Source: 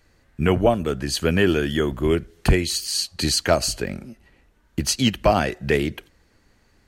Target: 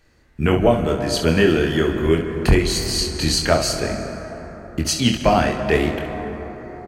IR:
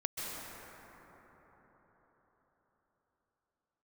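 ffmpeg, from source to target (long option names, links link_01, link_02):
-filter_complex "[0:a]aecho=1:1:25|68:0.562|0.355,asplit=2[link_01][link_02];[1:a]atrim=start_sample=2205,lowpass=8300[link_03];[link_02][link_03]afir=irnorm=-1:irlink=0,volume=-7.5dB[link_04];[link_01][link_04]amix=inputs=2:normalize=0,volume=-2dB"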